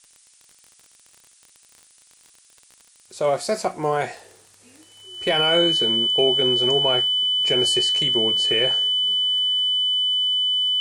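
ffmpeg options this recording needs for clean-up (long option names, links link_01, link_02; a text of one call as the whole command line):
ffmpeg -i in.wav -af "adeclick=threshold=4,bandreject=frequency=3000:width=30,afftdn=noise_reduction=13:noise_floor=-55" out.wav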